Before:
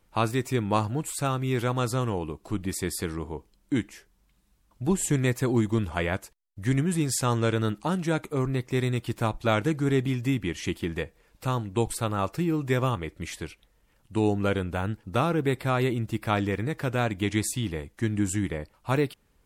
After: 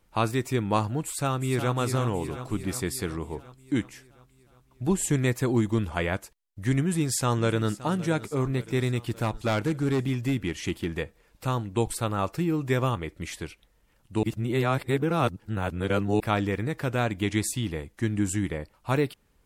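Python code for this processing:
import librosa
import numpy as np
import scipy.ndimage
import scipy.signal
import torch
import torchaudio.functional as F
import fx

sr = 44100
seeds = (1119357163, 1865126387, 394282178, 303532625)

y = fx.echo_throw(x, sr, start_s=1.03, length_s=0.71, ms=360, feedback_pct=65, wet_db=-8.5)
y = fx.echo_throw(y, sr, start_s=6.8, length_s=0.9, ms=570, feedback_pct=60, wet_db=-16.5)
y = fx.overload_stage(y, sr, gain_db=20.5, at=(9.03, 10.96))
y = fx.edit(y, sr, fx.reverse_span(start_s=14.23, length_s=1.97), tone=tone)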